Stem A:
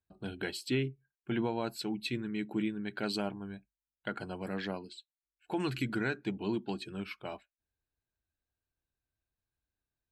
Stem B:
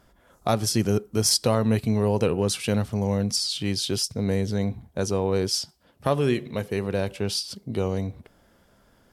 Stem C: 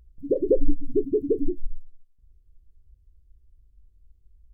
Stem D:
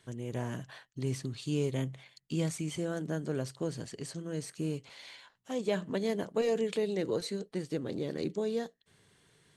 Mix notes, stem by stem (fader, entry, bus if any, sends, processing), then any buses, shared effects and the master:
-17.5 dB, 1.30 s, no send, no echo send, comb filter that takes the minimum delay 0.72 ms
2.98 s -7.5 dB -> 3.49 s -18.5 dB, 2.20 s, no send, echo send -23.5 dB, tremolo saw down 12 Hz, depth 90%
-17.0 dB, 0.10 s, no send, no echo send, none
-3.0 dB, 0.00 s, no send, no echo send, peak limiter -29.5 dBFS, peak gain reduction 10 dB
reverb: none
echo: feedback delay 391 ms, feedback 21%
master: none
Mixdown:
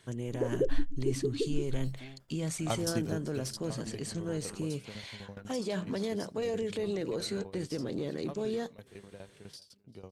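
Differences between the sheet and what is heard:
stem C -17.0 dB -> -9.0 dB; stem D -3.0 dB -> +3.5 dB

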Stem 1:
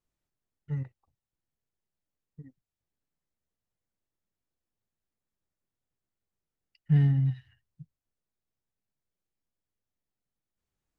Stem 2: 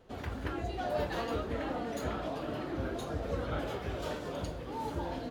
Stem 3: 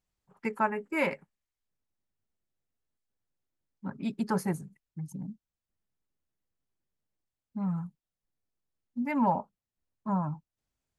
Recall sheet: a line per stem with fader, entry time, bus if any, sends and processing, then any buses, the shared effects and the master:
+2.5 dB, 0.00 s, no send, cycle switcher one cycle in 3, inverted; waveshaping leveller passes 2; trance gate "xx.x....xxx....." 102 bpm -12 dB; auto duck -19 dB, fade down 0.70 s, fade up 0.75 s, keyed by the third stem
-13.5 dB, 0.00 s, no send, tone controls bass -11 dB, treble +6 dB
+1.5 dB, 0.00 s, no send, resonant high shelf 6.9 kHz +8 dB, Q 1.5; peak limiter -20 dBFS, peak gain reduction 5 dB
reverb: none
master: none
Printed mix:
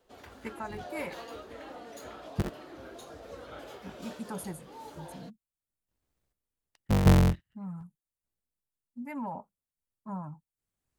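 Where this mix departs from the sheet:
stem 1 +2.5 dB -> +9.5 dB; stem 2 -13.5 dB -> -7.5 dB; stem 3 +1.5 dB -> -8.5 dB

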